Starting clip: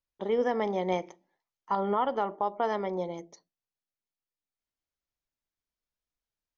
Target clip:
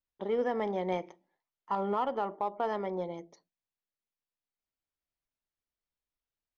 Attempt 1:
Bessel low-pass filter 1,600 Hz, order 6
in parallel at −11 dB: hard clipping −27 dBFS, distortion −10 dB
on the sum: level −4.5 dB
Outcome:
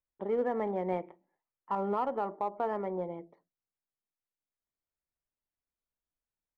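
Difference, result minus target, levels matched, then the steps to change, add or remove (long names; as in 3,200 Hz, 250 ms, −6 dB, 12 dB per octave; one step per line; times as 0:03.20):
4,000 Hz band −10.0 dB
change: Bessel low-pass filter 4,300 Hz, order 6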